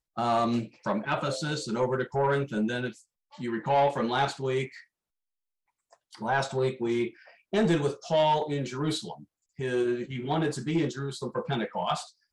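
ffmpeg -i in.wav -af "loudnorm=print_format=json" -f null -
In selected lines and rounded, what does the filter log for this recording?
"input_i" : "-29.3",
"input_tp" : "-16.1",
"input_lra" : "2.2",
"input_thresh" : "-39.7",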